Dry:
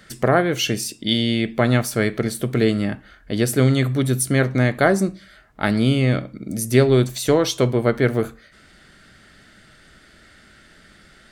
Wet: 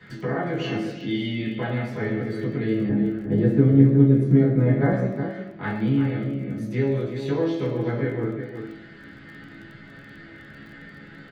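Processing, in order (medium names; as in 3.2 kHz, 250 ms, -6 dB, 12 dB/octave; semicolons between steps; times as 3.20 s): tone controls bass +2 dB, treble -12 dB; chord resonator C#3 minor, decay 0.21 s; compression 2:1, threshold -53 dBFS, peak gain reduction 17.5 dB; reverberation RT60 0.85 s, pre-delay 3 ms, DRR -7.5 dB; flange 0.51 Hz, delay 7.3 ms, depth 9.2 ms, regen +84%; 2.89–4.93 s: tilt shelf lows +9 dB, about 1.1 kHz; echo from a far wall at 62 m, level -8 dB; crackle 22 per s -47 dBFS; trim +4.5 dB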